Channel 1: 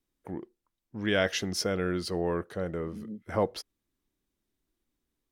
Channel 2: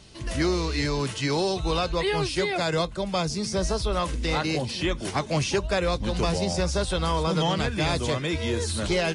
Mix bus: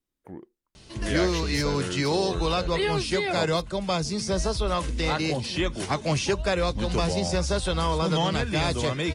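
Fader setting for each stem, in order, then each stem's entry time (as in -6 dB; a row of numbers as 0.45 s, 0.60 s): -3.5 dB, 0.0 dB; 0.00 s, 0.75 s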